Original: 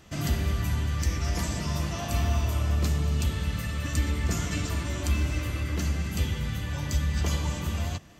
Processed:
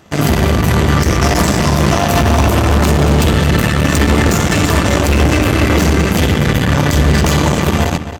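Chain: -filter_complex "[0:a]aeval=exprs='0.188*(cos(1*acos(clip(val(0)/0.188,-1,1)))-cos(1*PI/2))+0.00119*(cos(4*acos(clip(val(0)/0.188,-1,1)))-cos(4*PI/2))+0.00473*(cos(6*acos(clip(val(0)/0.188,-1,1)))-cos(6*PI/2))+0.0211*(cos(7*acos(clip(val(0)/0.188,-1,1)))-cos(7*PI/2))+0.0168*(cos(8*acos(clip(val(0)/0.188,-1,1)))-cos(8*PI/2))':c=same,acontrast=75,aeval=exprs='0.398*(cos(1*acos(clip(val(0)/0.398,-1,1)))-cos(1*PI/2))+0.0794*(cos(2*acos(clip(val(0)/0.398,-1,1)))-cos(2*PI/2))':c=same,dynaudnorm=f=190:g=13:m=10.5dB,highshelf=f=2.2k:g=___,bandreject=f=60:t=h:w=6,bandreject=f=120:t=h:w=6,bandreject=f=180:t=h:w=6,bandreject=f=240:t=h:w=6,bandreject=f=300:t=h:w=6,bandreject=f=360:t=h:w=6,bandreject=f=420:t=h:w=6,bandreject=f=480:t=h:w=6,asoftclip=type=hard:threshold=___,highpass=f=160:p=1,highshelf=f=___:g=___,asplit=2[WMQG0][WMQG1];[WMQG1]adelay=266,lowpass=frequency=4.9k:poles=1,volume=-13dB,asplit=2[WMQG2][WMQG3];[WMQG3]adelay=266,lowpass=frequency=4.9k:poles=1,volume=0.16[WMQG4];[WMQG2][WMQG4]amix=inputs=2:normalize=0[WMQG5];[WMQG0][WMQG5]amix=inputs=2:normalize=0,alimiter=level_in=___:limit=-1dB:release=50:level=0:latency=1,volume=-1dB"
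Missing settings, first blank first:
-11.5, -15dB, 5.3k, 4.5, 20dB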